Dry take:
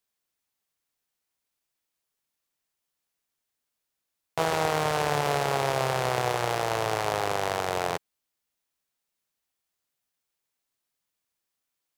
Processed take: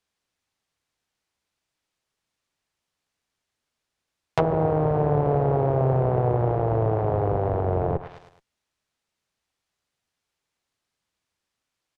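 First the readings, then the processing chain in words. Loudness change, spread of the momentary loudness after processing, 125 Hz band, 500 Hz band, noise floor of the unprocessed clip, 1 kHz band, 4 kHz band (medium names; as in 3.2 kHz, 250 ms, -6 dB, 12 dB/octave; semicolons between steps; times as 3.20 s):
+4.0 dB, 4 LU, +12.0 dB, +5.0 dB, -84 dBFS, -0.5 dB, under -15 dB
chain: distance through air 60 m; in parallel at -5 dB: Schmitt trigger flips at -39.5 dBFS; on the sum: feedback delay 106 ms, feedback 46%, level -17 dB; low-pass that closes with the level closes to 580 Hz, closed at -23 dBFS; peaking EQ 74 Hz +5 dB 2 oct; trim +5.5 dB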